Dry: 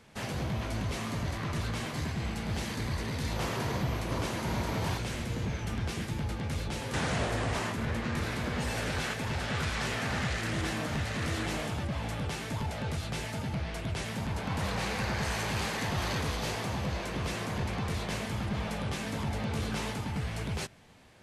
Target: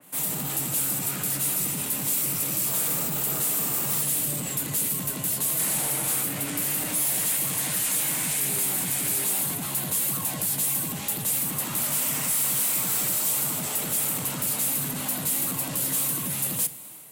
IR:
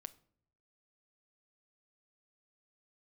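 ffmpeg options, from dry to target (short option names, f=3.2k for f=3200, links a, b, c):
-filter_complex "[0:a]highpass=f=110:w=0.5412,highpass=f=110:w=1.3066,asplit=2[a][b];[b]alimiter=level_in=6.5dB:limit=-24dB:level=0:latency=1,volume=-6.5dB,volume=1.5dB[c];[a][c]amix=inputs=2:normalize=0,dynaudnorm=f=250:g=3:m=3dB,acrossover=split=660[d][e];[e]aexciter=amount=13.7:drive=4:freq=6.4k[f];[d][f]amix=inputs=2:normalize=0,asoftclip=type=tanh:threshold=-22.5dB,asetrate=54684,aresample=44100[g];[1:a]atrim=start_sample=2205[h];[g][h]afir=irnorm=-1:irlink=0,adynamicequalizer=threshold=0.00282:dfrequency=3000:dqfactor=0.7:tfrequency=3000:tqfactor=0.7:attack=5:release=100:ratio=0.375:range=3.5:mode=boostabove:tftype=highshelf"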